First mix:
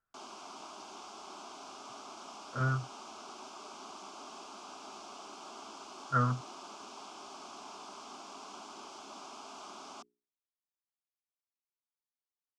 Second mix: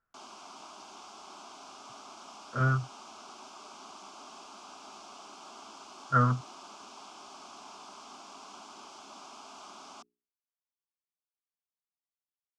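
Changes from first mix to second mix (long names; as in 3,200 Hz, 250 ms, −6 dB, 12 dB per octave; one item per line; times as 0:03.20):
speech +4.5 dB
background: add parametric band 400 Hz −4 dB 1.1 octaves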